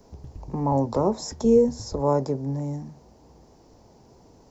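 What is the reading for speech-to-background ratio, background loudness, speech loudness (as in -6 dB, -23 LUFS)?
19.5 dB, -43.5 LUFS, -24.0 LUFS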